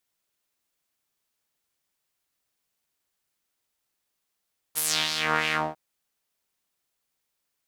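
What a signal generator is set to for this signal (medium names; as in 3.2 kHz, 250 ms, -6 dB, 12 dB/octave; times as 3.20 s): synth patch with filter wobble D#3, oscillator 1 saw, interval +7 st, noise -17 dB, filter bandpass, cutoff 610 Hz, Q 2.3, filter envelope 4 oct, filter decay 0.57 s, attack 29 ms, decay 0.31 s, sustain -7 dB, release 0.21 s, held 0.79 s, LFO 3.1 Hz, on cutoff 0.5 oct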